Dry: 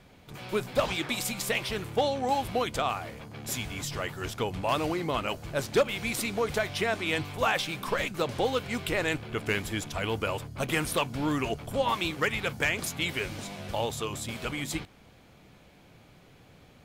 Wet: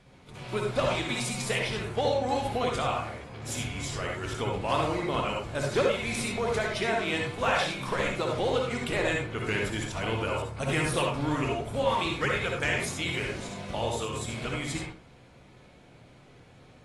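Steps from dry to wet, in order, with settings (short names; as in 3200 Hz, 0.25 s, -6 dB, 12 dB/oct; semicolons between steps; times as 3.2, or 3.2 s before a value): reverb RT60 0.40 s, pre-delay 53 ms, DRR 0 dB; gain -3 dB; AAC 32 kbps 24000 Hz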